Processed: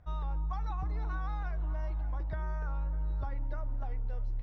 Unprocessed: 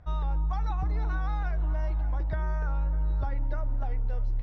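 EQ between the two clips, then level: dynamic bell 1.1 kHz, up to +5 dB, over -56 dBFS, Q 5.8; -6.0 dB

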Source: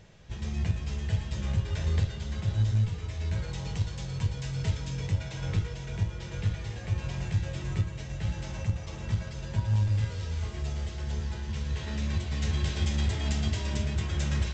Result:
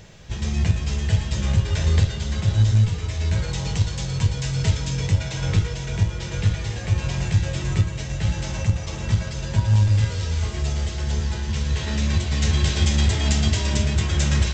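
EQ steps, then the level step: treble shelf 4.8 kHz +7 dB; +8.5 dB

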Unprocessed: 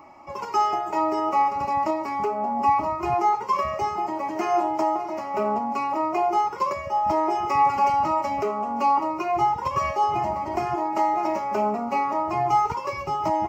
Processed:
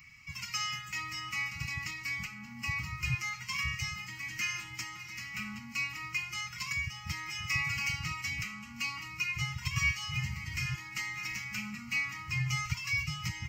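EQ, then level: Chebyshev band-stop 140–2100 Hz, order 3; bass shelf 96 Hz -5 dB; +6.5 dB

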